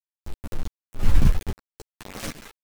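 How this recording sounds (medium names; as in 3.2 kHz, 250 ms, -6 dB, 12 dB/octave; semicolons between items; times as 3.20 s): a quantiser's noise floor 6-bit, dither none; tremolo saw up 1.3 Hz, depth 80%; a shimmering, thickened sound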